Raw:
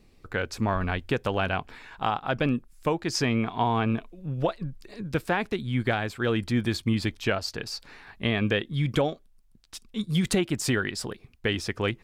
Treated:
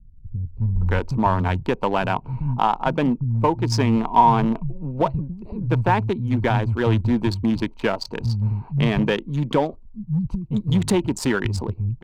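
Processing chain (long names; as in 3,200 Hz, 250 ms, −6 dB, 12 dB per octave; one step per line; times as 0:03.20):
adaptive Wiener filter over 25 samples
low-shelf EQ 230 Hz +9.5 dB
multiband delay without the direct sound lows, highs 570 ms, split 160 Hz
in parallel at −5 dB: gain into a clipping stage and back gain 21 dB
on the sum: parametric band 940 Hz +13.5 dB 0.27 octaves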